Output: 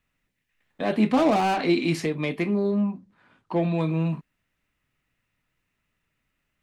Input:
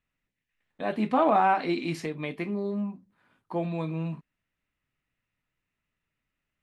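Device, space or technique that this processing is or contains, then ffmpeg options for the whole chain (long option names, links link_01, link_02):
one-band saturation: -filter_complex "[0:a]acrossover=split=520|2600[link_01][link_02][link_03];[link_02]asoftclip=type=tanh:threshold=-34dB[link_04];[link_01][link_04][link_03]amix=inputs=3:normalize=0,asettb=1/sr,asplit=3[link_05][link_06][link_07];[link_05]atrim=end=2.714[link_08];[link_06]atrim=start=2.71:end=3.77,asetpts=PTS-STARTPTS,afade=type=in:duration=0.004:curve=qsin,afade=type=out:start_time=1.056:duration=0.004:curve=qsin,lowpass=7100[link_09];[link_07]atrim=start=3.766[link_10];[link_08][link_09]acrossfade=duration=0.004:curve1=hsin:curve2=qsin[link_11];[link_11][link_10]acrossfade=duration=0.004:curve1=qsin:curve2=hsin,volume=7dB"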